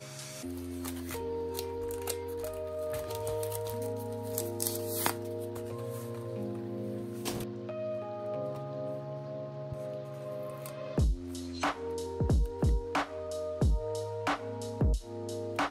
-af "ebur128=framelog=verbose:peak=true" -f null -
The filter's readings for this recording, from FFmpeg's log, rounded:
Integrated loudness:
  I:         -35.5 LUFS
  Threshold: -45.5 LUFS
Loudness range:
  LRA:         5.5 LU
  Threshold: -55.5 LUFS
  LRA low:   -38.2 LUFS
  LRA high:  -32.8 LUFS
True peak:
  Peak:       -9.6 dBFS